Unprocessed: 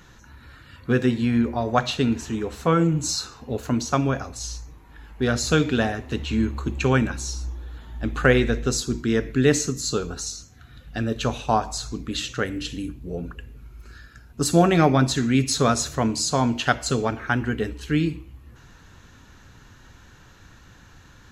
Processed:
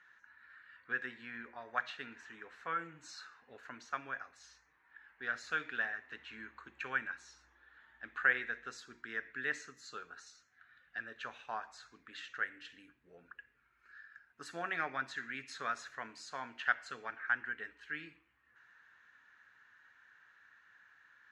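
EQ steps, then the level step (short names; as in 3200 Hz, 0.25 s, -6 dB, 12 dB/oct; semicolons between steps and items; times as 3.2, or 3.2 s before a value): band-pass 1700 Hz, Q 4; -4.0 dB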